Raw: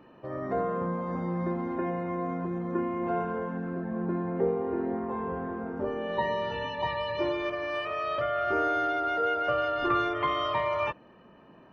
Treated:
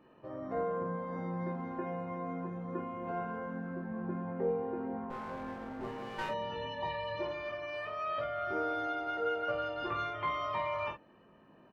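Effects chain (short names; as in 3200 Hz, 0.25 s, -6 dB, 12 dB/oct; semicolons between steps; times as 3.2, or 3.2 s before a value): 5.1–6.29 minimum comb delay 7.8 ms; early reflections 19 ms -3.5 dB, 47 ms -7 dB; gain -8.5 dB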